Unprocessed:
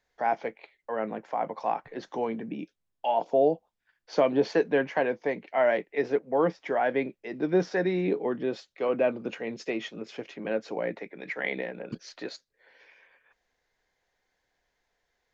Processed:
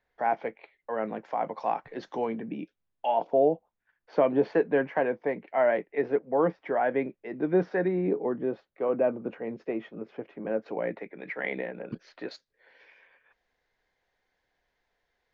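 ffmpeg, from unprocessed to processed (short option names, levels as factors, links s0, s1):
-af "asetnsamples=n=441:p=0,asendcmd='1.06 lowpass f 5500;2.26 lowpass f 3100;3.27 lowpass f 2000;7.88 lowpass f 1300;10.66 lowpass f 2400;12.31 lowpass f 4500',lowpass=2800"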